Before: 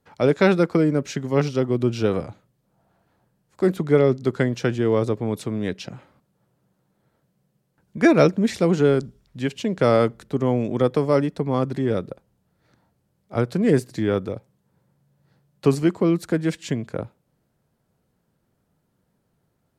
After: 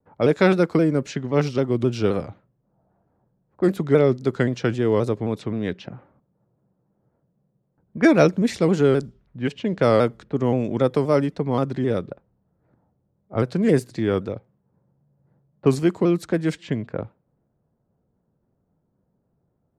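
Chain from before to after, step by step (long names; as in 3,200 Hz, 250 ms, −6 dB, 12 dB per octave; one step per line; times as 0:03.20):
low-pass that shuts in the quiet parts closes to 850 Hz, open at −17 dBFS
pitch modulation by a square or saw wave saw down 3.8 Hz, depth 100 cents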